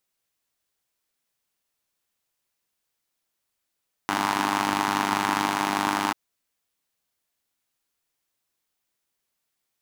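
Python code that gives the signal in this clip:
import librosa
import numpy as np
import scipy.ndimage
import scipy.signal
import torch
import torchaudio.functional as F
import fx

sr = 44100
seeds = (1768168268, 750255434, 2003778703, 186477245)

y = fx.engine_four(sr, seeds[0], length_s=2.04, rpm=3000, resonances_hz=(280.0, 900.0))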